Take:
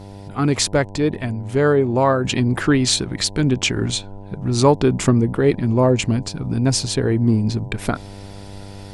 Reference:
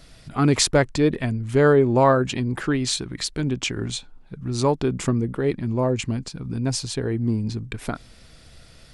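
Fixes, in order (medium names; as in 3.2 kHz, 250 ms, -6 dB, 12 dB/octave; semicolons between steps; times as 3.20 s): de-hum 99 Hz, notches 10; trim 0 dB, from 2.24 s -6.5 dB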